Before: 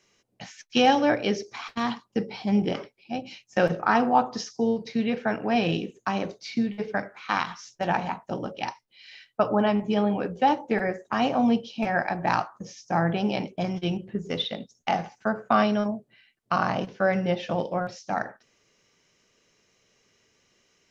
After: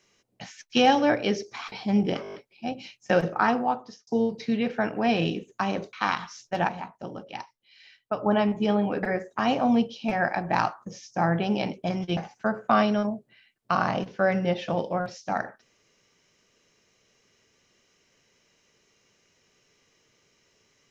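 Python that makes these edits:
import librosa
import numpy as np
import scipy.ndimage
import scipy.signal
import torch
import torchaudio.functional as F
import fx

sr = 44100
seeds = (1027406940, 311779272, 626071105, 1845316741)

y = fx.edit(x, sr, fx.cut(start_s=1.72, length_s=0.59),
    fx.stutter(start_s=2.81, slice_s=0.02, count=7),
    fx.fade_out_span(start_s=3.84, length_s=0.7),
    fx.cut(start_s=6.4, length_s=0.81),
    fx.clip_gain(start_s=7.96, length_s=1.58, db=-6.0),
    fx.cut(start_s=10.31, length_s=0.46),
    fx.cut(start_s=13.91, length_s=1.07), tone=tone)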